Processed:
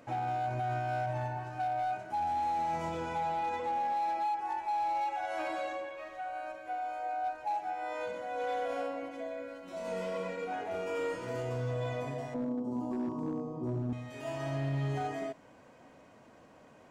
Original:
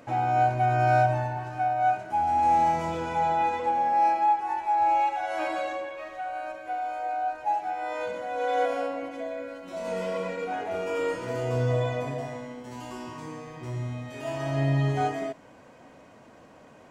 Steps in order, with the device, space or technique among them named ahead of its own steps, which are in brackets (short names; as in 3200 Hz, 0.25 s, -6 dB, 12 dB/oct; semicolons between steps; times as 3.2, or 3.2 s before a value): 12.34–13.93 EQ curve 100 Hz 0 dB, 240 Hz +14 dB, 1200 Hz 0 dB, 1800 Hz -25 dB, 5000 Hz -12 dB; limiter into clipper (limiter -20.5 dBFS, peak gain reduction 7.5 dB; hard clip -23 dBFS, distortion -23 dB); gain -5.5 dB